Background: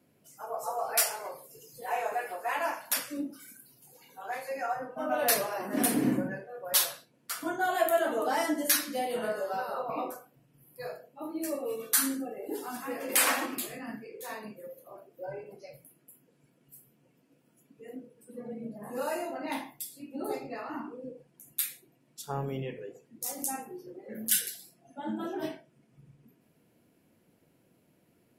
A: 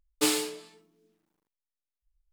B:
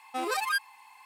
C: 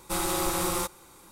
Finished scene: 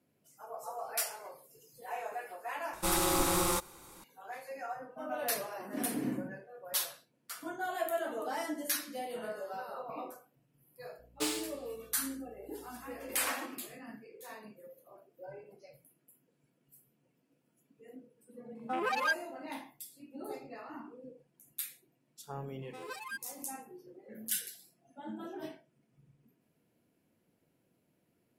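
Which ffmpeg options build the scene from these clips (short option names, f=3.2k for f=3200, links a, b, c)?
-filter_complex "[2:a]asplit=2[a][b];[0:a]volume=-8dB[c];[1:a]aeval=exprs='val(0)+0.00224*(sin(2*PI*60*n/s)+sin(2*PI*2*60*n/s)/2+sin(2*PI*3*60*n/s)/3+sin(2*PI*4*60*n/s)/4+sin(2*PI*5*60*n/s)/5)':c=same[d];[a]afwtdn=0.0126[e];[b]aecho=1:1:2:0.48[f];[3:a]atrim=end=1.31,asetpts=PTS-STARTPTS,volume=-1.5dB,afade=t=in:d=0.004:c=hsin,afade=t=out:st=1.306:d=0.004:c=hsin,adelay=2730[g];[d]atrim=end=2.32,asetpts=PTS-STARTPTS,volume=-8.5dB,afade=t=in:d=0.004:c=hsin,afade=t=out:st=2.316:d=0.004:c=hsin,adelay=10990[h];[e]atrim=end=1.05,asetpts=PTS-STARTPTS,volume=-2dB,afade=t=in:d=0.004:c=hsin,afade=t=out:st=1.046:d=0.004:c=hsin,adelay=18550[i];[f]atrim=end=1.05,asetpts=PTS-STARTPTS,volume=-14.5dB,afade=t=in:d=0.05,afade=t=out:st=1:d=0.05,adelay=22590[j];[c][g][h][i][j]amix=inputs=5:normalize=0"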